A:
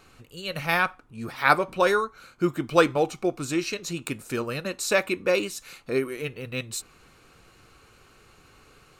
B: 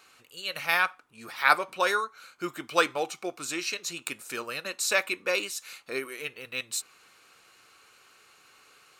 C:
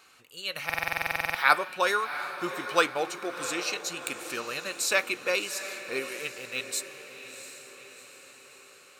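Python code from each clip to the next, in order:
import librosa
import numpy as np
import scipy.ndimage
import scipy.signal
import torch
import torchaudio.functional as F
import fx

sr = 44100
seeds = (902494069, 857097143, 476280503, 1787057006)

y1 = fx.highpass(x, sr, hz=1300.0, slope=6)
y1 = y1 * librosa.db_to_amplitude(1.5)
y2 = fx.echo_diffused(y1, sr, ms=717, feedback_pct=53, wet_db=-11)
y2 = fx.buffer_glitch(y2, sr, at_s=(0.65,), block=2048, repeats=14)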